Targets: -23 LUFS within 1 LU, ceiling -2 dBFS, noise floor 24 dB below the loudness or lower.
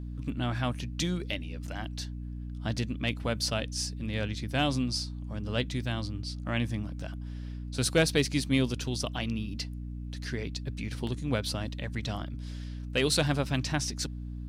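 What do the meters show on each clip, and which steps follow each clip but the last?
hum 60 Hz; highest harmonic 300 Hz; hum level -35 dBFS; loudness -32.0 LUFS; peak level -13.5 dBFS; loudness target -23.0 LUFS
-> de-hum 60 Hz, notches 5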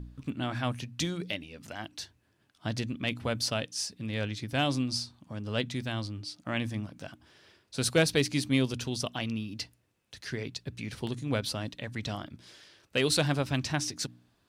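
hum not found; loudness -32.0 LUFS; peak level -14.0 dBFS; loudness target -23.0 LUFS
-> trim +9 dB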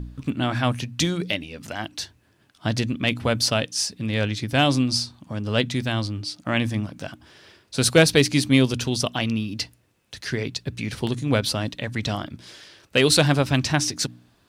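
loudness -23.0 LUFS; peak level -5.0 dBFS; noise floor -62 dBFS

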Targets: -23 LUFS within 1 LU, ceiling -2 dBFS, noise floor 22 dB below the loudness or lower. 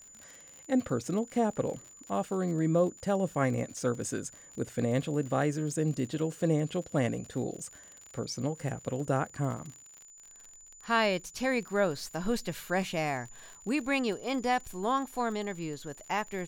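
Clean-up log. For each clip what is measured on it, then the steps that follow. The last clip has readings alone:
tick rate 51 per s; steady tone 7 kHz; tone level -51 dBFS; loudness -31.5 LUFS; peak level -15.0 dBFS; loudness target -23.0 LUFS
-> de-click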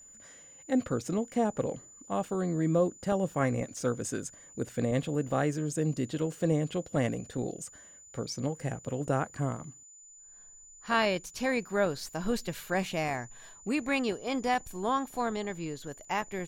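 tick rate 0 per s; steady tone 7 kHz; tone level -51 dBFS
-> band-stop 7 kHz, Q 30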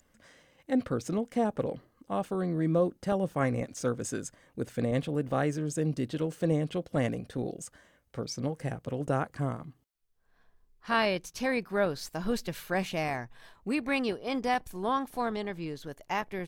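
steady tone not found; loudness -31.5 LUFS; peak level -15.5 dBFS; loudness target -23.0 LUFS
-> trim +8.5 dB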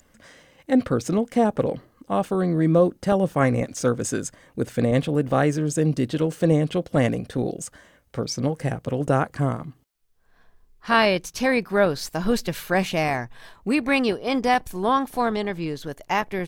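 loudness -23.0 LUFS; peak level -7.0 dBFS; noise floor -61 dBFS

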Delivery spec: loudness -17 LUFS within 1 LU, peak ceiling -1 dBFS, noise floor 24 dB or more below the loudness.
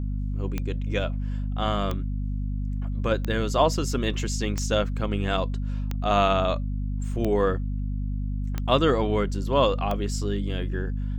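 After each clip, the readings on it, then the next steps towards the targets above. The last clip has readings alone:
clicks found 8; hum 50 Hz; highest harmonic 250 Hz; hum level -25 dBFS; loudness -26.5 LUFS; peak level -5.5 dBFS; loudness target -17.0 LUFS
-> de-click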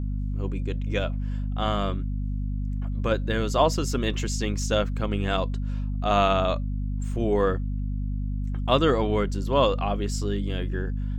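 clicks found 0; hum 50 Hz; highest harmonic 250 Hz; hum level -25 dBFS
-> hum notches 50/100/150/200/250 Hz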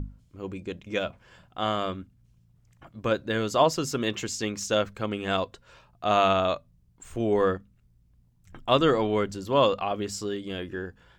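hum not found; loudness -27.0 LUFS; peak level -6.5 dBFS; loudness target -17.0 LUFS
-> trim +10 dB; peak limiter -1 dBFS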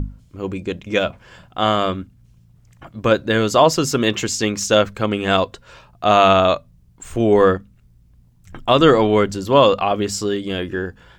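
loudness -17.5 LUFS; peak level -1.0 dBFS; noise floor -52 dBFS

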